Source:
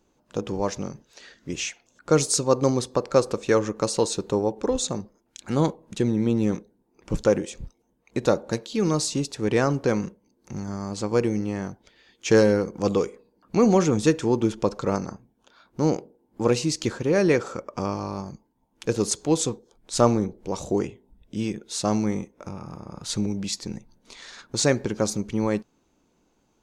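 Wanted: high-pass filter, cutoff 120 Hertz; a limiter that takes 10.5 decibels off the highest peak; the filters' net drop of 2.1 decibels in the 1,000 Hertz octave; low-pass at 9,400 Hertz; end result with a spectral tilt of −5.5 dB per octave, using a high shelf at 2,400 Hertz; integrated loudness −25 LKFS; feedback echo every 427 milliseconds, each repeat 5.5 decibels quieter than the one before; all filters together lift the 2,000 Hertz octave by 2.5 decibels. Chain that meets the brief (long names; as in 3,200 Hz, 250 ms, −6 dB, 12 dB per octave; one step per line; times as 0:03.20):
high-pass filter 120 Hz
low-pass filter 9,400 Hz
parametric band 1,000 Hz −3.5 dB
parametric band 2,000 Hz +8 dB
high-shelf EQ 2,400 Hz −7.5 dB
brickwall limiter −15 dBFS
repeating echo 427 ms, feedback 53%, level −5.5 dB
level +3 dB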